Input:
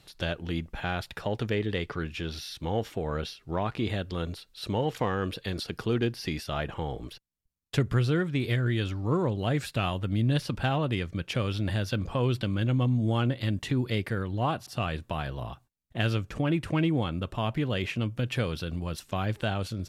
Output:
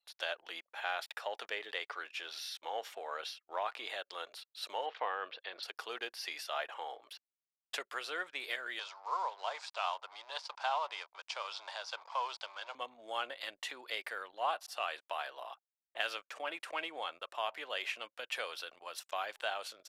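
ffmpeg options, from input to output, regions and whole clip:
-filter_complex "[0:a]asettb=1/sr,asplit=3[s0][s1][s2];[s0]atrim=end=4.864[s3];[s1]atrim=start=4.86:end=5.63,asetpts=PTS-STARTPTS,afade=t=in:d=0.004:c=qsin,afade=t=out:st=0.766:d=0.004:c=qsin,lowpass=f=4200:w=0.5412,lowpass=f=4200:w=1.3066,highshelf=f=2800:g=-5.5[s4];[s2]atrim=start=5.626[s5];[s3][s4]acrossfade=d=0.004:c1=hsin:c2=qsin[s6];[s6][s5]acrossfade=d=0.004:c1=qsin:c2=hsin,asettb=1/sr,asplit=3[s7][s8][s9];[s7]atrim=end=8.794[s10];[s8]atrim=start=8.79:end=12.75,asetpts=PTS-STARTPTS,afade=t=in:d=0.004:c=qsin,afade=t=out:st=3.956:d=0.004:c=qsin,aeval=exprs='sgn(val(0))*max(abs(val(0))-0.00708,0)':c=same,highpass=f=480:w=0.5412,highpass=f=480:w=1.3066,equalizer=f=520:t=q:w=4:g=-4,equalizer=f=960:t=q:w=4:g=9,equalizer=f=1800:t=q:w=4:g=-6,equalizer=f=2800:t=q:w=4:g=-4,equalizer=f=4900:t=q:w=4:g=6,lowpass=f=7300:w=0.5412,lowpass=f=7300:w=1.3066[s11];[s9]atrim=start=12.746[s12];[s10][s11]acrossfade=d=0.004:c1=hsin:c2=qsin[s13];[s13][s12]acrossfade=d=0.004:c1=qsin:c2=hsin,highpass=f=630:w=0.5412,highpass=f=630:w=1.3066,anlmdn=0.000398,volume=0.708"

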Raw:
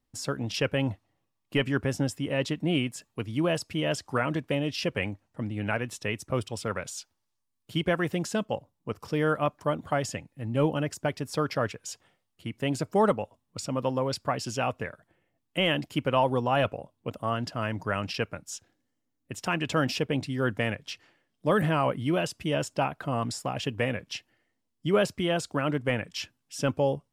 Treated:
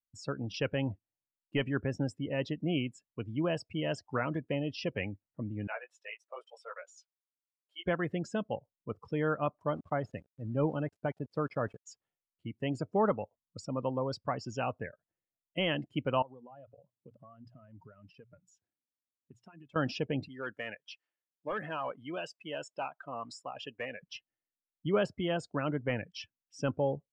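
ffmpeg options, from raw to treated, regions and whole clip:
-filter_complex "[0:a]asettb=1/sr,asplit=3[s0][s1][s2];[s0]atrim=end=5.674[s3];[s1]atrim=start=5.67:end=7.84,asetpts=PTS-STARTPTS,afade=t=in:d=0.004:c=qsin,afade=t=out:st=2.166:d=0.004:c=qsin,highpass=f=560:w=0.5412,highpass=f=560:w=1.3066,flanger=delay=15:depth=3:speed=1.1[s4];[s2]atrim=start=7.836[s5];[s3][s4]acrossfade=d=0.004:c1=hsin:c2=qsin[s6];[s6][s5]acrossfade=d=0.004:c1=qsin:c2=hsin,asettb=1/sr,asplit=3[s7][s8][s9];[s7]atrim=end=9.754[s10];[s8]atrim=start=9.75:end=11.87,asetpts=PTS-STARTPTS,afade=t=in:d=0.004:c=qsin,afade=t=out:st=2.116:d=0.004:c=qsin,lowpass=f=2600:p=1,aeval=exprs='val(0)*gte(abs(val(0)),0.0075)':c=same[s11];[s9]atrim=start=11.866[s12];[s10][s11]acrossfade=d=0.004:c1=hsin:c2=qsin[s13];[s13][s12]acrossfade=d=0.004:c1=qsin:c2=hsin,asettb=1/sr,asplit=3[s14][s15][s16];[s14]atrim=end=16.224[s17];[s15]atrim=start=16.22:end=19.76,asetpts=PTS-STARTPTS,afade=t=in:d=0.004:c=qsin,afade=t=out:st=3.536:d=0.004:c=qsin,bandreject=f=60:t=h:w=6,bandreject=f=120:t=h:w=6,bandreject=f=180:t=h:w=6,acompressor=threshold=0.00794:ratio=6:attack=3.2:release=140:knee=1:detection=peak,highpass=53[s18];[s16]atrim=start=19.756[s19];[s17][s18]acrossfade=d=0.004:c1=hsin:c2=qsin[s20];[s20][s19]acrossfade=d=0.004:c1=qsin:c2=hsin,asettb=1/sr,asplit=3[s21][s22][s23];[s21]atrim=end=20.284[s24];[s22]atrim=start=20.28:end=24.02,asetpts=PTS-STARTPTS,afade=t=in:d=0.004:c=qsin,afade=t=out:st=3.736:d=0.004:c=qsin,highpass=f=800:p=1,asoftclip=type=hard:threshold=0.0596[s25];[s23]atrim=start=24.016[s26];[s24][s25]acrossfade=d=0.004:c1=hsin:c2=qsin[s27];[s27][s26]acrossfade=d=0.004:c1=qsin:c2=hsin,afftdn=nr=22:nf=-37,lowpass=12000,highshelf=f=4300:g=-5.5,volume=0.562"

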